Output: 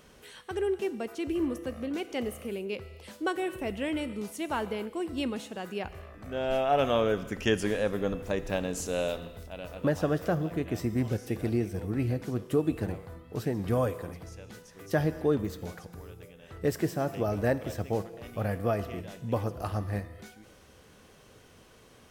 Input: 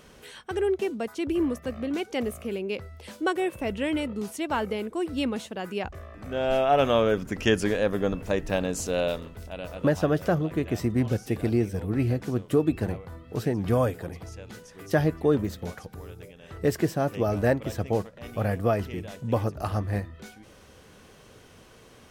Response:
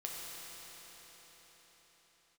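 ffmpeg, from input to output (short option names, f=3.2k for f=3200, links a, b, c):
-filter_complex "[0:a]asplit=2[a][b];[1:a]atrim=start_sample=2205,afade=t=out:st=0.34:d=0.01,atrim=end_sample=15435,highshelf=f=10k:g=11[c];[b][c]afir=irnorm=-1:irlink=0,volume=-8dB[d];[a][d]amix=inputs=2:normalize=0,volume=-6dB"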